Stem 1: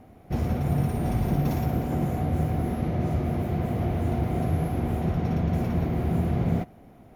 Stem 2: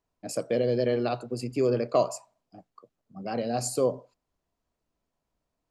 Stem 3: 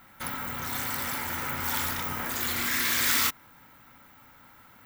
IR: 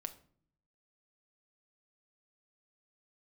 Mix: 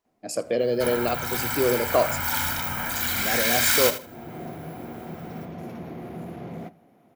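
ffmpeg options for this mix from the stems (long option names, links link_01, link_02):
-filter_complex "[0:a]asoftclip=type=tanh:threshold=-18.5dB,highpass=210,adelay=50,volume=-8.5dB,afade=type=in:start_time=4.01:duration=0.36:silence=0.223872,asplit=2[link_01][link_02];[link_02]volume=-3.5dB[link_03];[1:a]lowshelf=frequency=200:gain=-11,volume=1dB,asplit=3[link_04][link_05][link_06];[link_05]volume=-5dB[link_07];[link_06]volume=-18dB[link_08];[2:a]aecho=1:1:1.3:0.57,adelay=600,volume=2dB,asplit=2[link_09][link_10];[link_10]volume=-11.5dB[link_11];[3:a]atrim=start_sample=2205[link_12];[link_03][link_07]amix=inputs=2:normalize=0[link_13];[link_13][link_12]afir=irnorm=-1:irlink=0[link_14];[link_08][link_11]amix=inputs=2:normalize=0,aecho=0:1:78|156|234:1|0.18|0.0324[link_15];[link_01][link_04][link_09][link_14][link_15]amix=inputs=5:normalize=0"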